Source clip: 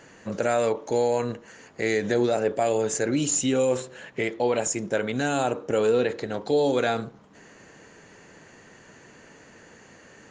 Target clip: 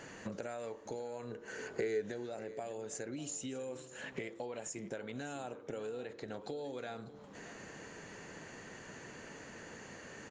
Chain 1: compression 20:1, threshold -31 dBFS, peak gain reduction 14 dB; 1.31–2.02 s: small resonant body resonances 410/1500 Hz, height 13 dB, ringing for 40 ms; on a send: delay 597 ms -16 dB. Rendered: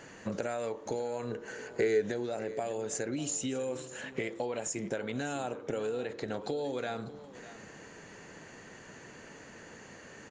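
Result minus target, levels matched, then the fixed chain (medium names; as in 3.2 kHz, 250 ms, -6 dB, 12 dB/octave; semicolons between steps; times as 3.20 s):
compression: peak gain reduction -7.5 dB
compression 20:1, threshold -39 dBFS, peak gain reduction 21.5 dB; 1.31–2.02 s: small resonant body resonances 410/1500 Hz, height 13 dB, ringing for 40 ms; on a send: delay 597 ms -16 dB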